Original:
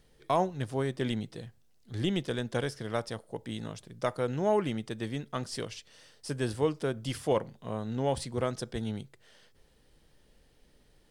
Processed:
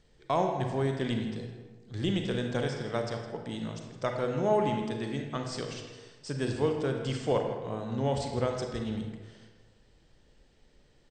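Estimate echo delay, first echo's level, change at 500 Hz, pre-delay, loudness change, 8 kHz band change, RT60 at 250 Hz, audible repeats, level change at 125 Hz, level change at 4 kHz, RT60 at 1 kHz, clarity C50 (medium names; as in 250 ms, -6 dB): 161 ms, -14.0 dB, +1.0 dB, 32 ms, +1.0 dB, -2.0 dB, 1.4 s, 1, +1.5 dB, +0.5 dB, 1.3 s, 4.0 dB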